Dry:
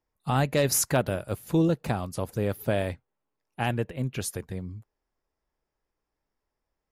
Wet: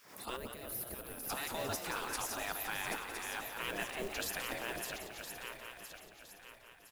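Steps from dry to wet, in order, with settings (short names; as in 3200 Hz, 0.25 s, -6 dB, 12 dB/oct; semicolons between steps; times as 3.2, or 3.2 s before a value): regenerating reverse delay 0.507 s, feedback 59%, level -11.5 dB; spectral gate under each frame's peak -15 dB weak; limiter -26 dBFS, peak gain reduction 9.5 dB; reverse; compressor, threshold -46 dBFS, peak gain reduction 12.5 dB; reverse; modulation noise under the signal 17 dB; spectral gain 0.37–1.3, 670–9300 Hz -15 dB; frequency-shifting echo 0.176 s, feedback 49%, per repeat +69 Hz, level -9 dB; backwards sustainer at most 85 dB/s; gain +9.5 dB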